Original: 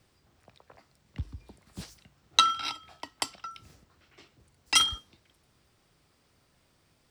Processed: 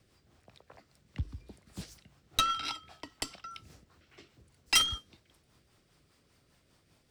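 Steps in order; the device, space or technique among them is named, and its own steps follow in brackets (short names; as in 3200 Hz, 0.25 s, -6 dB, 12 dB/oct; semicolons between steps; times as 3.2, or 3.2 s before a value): overdriven rotary cabinet (tube stage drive 19 dB, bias 0.35; rotary speaker horn 5 Hz); gain +3 dB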